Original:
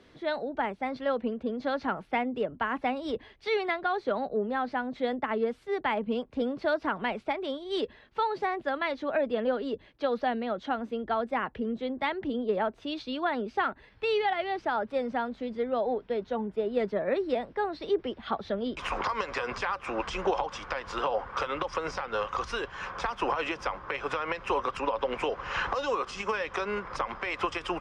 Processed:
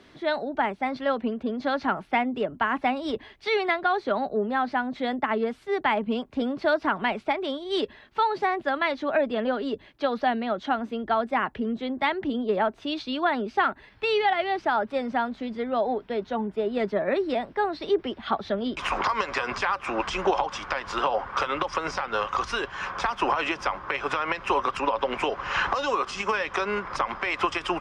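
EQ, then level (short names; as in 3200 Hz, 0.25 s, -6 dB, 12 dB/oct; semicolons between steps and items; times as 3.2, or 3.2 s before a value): low shelf 130 Hz -5.5 dB; bell 490 Hz -8 dB 0.22 oct; +5.5 dB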